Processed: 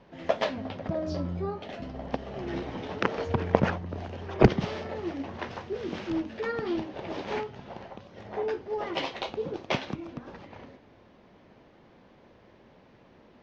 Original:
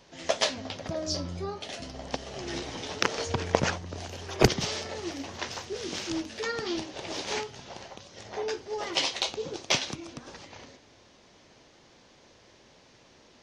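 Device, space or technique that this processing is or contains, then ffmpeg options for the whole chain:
phone in a pocket: -af "lowpass=3100,equalizer=frequency=200:width_type=o:width=0.51:gain=4.5,highshelf=frequency=2400:gain=-11,volume=2.5dB"

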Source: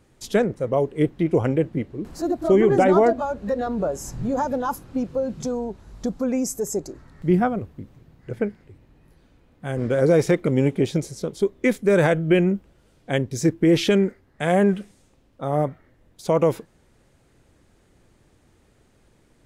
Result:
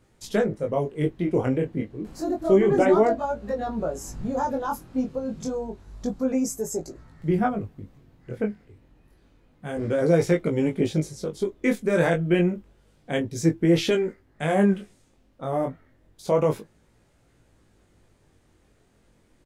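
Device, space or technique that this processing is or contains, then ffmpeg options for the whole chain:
double-tracked vocal: -filter_complex "[0:a]asplit=2[link_01][link_02];[link_02]adelay=19,volume=-12dB[link_03];[link_01][link_03]amix=inputs=2:normalize=0,flanger=delay=17.5:depth=5.9:speed=0.29"

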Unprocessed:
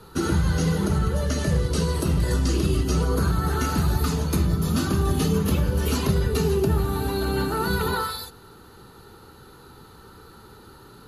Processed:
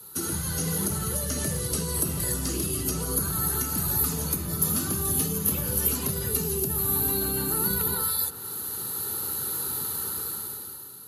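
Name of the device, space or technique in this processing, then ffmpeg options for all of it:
FM broadcast chain: -filter_complex "[0:a]highpass=frequency=75:width=0.5412,highpass=frequency=75:width=1.3066,dynaudnorm=framelen=140:gausssize=13:maxgain=16dB,acrossover=split=340|2600[link_01][link_02][link_03];[link_01]acompressor=threshold=-18dB:ratio=4[link_04];[link_02]acompressor=threshold=-26dB:ratio=4[link_05];[link_03]acompressor=threshold=-38dB:ratio=4[link_06];[link_04][link_05][link_06]amix=inputs=3:normalize=0,aemphasis=mode=production:type=50fm,alimiter=limit=-11dB:level=0:latency=1:release=456,asoftclip=type=hard:threshold=-13dB,lowpass=frequency=15000:width=0.5412,lowpass=frequency=15000:width=1.3066,aemphasis=mode=production:type=50fm,volume=-9dB"

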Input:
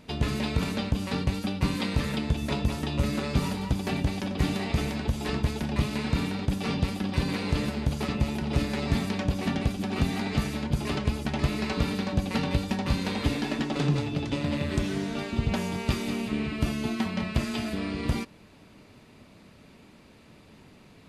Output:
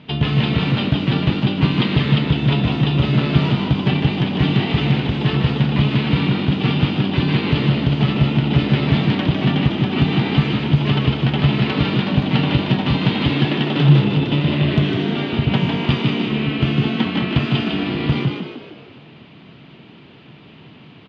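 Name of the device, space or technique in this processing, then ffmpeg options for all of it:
frequency-shifting delay pedal into a guitar cabinet: -filter_complex "[0:a]asplit=8[link_01][link_02][link_03][link_04][link_05][link_06][link_07][link_08];[link_02]adelay=153,afreqshift=60,volume=-4.5dB[link_09];[link_03]adelay=306,afreqshift=120,volume=-10.3dB[link_10];[link_04]adelay=459,afreqshift=180,volume=-16.2dB[link_11];[link_05]adelay=612,afreqshift=240,volume=-22dB[link_12];[link_06]adelay=765,afreqshift=300,volume=-27.9dB[link_13];[link_07]adelay=918,afreqshift=360,volume=-33.7dB[link_14];[link_08]adelay=1071,afreqshift=420,volume=-39.6dB[link_15];[link_01][link_09][link_10][link_11][link_12][link_13][link_14][link_15]amix=inputs=8:normalize=0,highpass=98,equalizer=frequency=140:width_type=q:width=4:gain=10,equalizer=frequency=540:width_type=q:width=4:gain=-5,equalizer=frequency=3100:width_type=q:width=4:gain=9,lowpass=frequency=3800:width=0.5412,lowpass=frequency=3800:width=1.3066,volume=7dB"

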